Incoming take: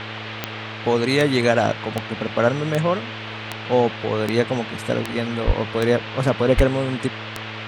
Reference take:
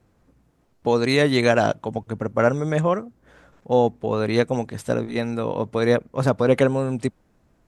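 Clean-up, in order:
click removal
hum removal 109.3 Hz, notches 5
0:05.46–0:05.58: high-pass filter 140 Hz 24 dB per octave
0:06.56–0:06.68: high-pass filter 140 Hz 24 dB per octave
noise reduction from a noise print 29 dB

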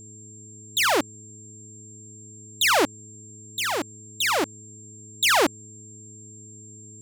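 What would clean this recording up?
hum removal 106.5 Hz, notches 4
notch filter 7,400 Hz, Q 30

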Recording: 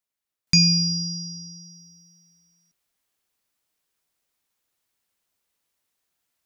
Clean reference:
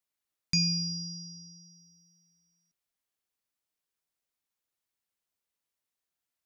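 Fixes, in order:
level 0 dB, from 0:00.47 −10 dB

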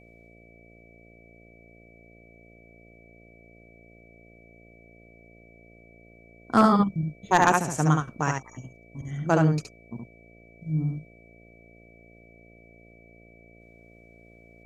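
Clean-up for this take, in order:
clipped peaks rebuilt −7.5 dBFS
hum removal 57.2 Hz, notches 12
notch filter 2,300 Hz, Q 30
echo removal 70 ms −3.5 dB

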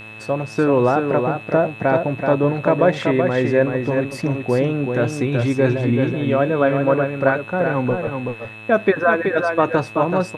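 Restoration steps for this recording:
hum removal 108.8 Hz, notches 38
notch filter 2,600 Hz, Q 30
downward expander −27 dBFS, range −21 dB
echo removal 379 ms −5.5 dB

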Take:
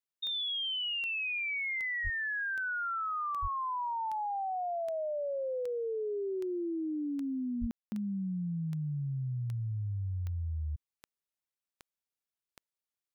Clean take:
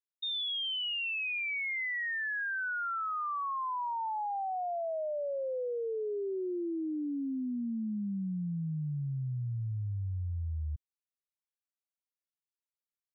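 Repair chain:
click removal
high-pass at the plosives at 0:02.03/0:03.41/0:07.60
ambience match 0:07.71–0:07.92

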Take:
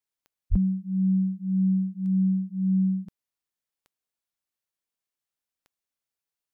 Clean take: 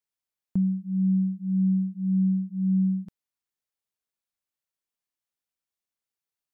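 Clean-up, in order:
click removal
0:00.50–0:00.62: high-pass filter 140 Hz 24 dB per octave

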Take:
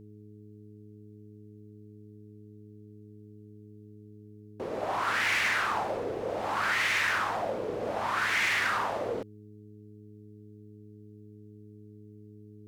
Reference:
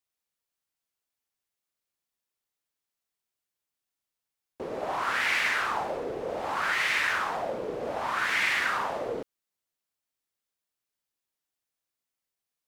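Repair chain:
clipped peaks rebuilt −22 dBFS
hum removal 105.2 Hz, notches 4

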